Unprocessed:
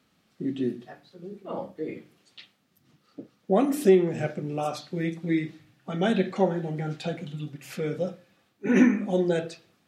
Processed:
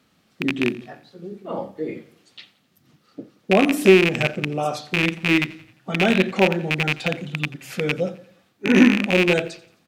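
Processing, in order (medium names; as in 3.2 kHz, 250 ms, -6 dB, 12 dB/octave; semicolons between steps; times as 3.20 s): rattle on loud lows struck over -29 dBFS, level -13 dBFS; feedback delay 87 ms, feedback 47%, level -20 dB; trim +5 dB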